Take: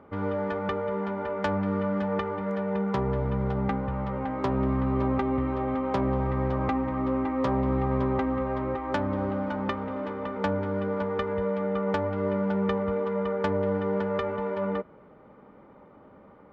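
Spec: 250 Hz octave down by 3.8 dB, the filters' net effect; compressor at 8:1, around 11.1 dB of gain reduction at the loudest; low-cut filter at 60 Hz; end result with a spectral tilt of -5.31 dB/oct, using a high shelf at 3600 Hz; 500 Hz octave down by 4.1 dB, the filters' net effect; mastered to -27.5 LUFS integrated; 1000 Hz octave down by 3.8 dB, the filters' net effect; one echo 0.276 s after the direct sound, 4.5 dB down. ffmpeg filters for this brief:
-af "highpass=60,equalizer=f=250:t=o:g=-4,equalizer=f=500:t=o:g=-3,equalizer=f=1k:t=o:g=-4.5,highshelf=f=3.6k:g=9,acompressor=threshold=-37dB:ratio=8,aecho=1:1:276:0.596,volume=11.5dB"

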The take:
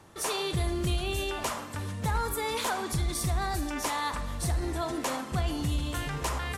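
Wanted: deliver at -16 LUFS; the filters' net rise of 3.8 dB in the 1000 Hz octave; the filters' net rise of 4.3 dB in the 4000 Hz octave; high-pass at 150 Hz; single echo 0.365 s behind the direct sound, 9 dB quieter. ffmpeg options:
-af "highpass=150,equalizer=f=1k:t=o:g=4.5,equalizer=f=4k:t=o:g=5,aecho=1:1:365:0.355,volume=13.5dB"

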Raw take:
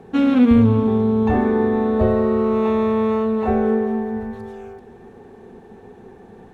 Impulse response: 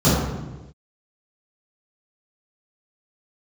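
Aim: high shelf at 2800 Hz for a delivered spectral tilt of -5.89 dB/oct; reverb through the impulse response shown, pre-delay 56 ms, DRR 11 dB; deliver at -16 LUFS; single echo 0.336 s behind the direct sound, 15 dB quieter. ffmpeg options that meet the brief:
-filter_complex "[0:a]highshelf=f=2.8k:g=-5,aecho=1:1:336:0.178,asplit=2[a][b];[1:a]atrim=start_sample=2205,adelay=56[c];[b][c]afir=irnorm=-1:irlink=0,volume=-33dB[d];[a][d]amix=inputs=2:normalize=0,volume=-1.5dB"

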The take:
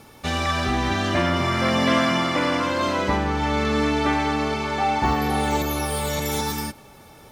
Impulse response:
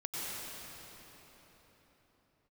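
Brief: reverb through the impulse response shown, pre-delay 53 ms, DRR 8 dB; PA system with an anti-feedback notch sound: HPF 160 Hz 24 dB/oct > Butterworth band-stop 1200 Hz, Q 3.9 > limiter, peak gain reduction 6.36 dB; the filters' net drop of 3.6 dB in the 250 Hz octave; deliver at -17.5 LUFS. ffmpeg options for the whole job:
-filter_complex "[0:a]equalizer=f=250:t=o:g=-4,asplit=2[a][b];[1:a]atrim=start_sample=2205,adelay=53[c];[b][c]afir=irnorm=-1:irlink=0,volume=-12dB[d];[a][d]amix=inputs=2:normalize=0,highpass=f=160:w=0.5412,highpass=f=160:w=1.3066,asuperstop=centerf=1200:order=8:qfactor=3.9,volume=7.5dB,alimiter=limit=-8.5dB:level=0:latency=1"

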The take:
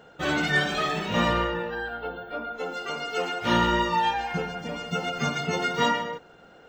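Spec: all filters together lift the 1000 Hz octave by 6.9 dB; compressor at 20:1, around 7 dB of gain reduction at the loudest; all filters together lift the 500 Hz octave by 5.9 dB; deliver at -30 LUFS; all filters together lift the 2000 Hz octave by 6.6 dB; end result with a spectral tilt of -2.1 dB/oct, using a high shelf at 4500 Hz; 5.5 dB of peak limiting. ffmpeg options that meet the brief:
-af "equalizer=f=500:t=o:g=5.5,equalizer=f=1k:t=o:g=5.5,equalizer=f=2k:t=o:g=6.5,highshelf=f=4.5k:g=-3.5,acompressor=threshold=-19dB:ratio=20,volume=-4.5dB,alimiter=limit=-20.5dB:level=0:latency=1"

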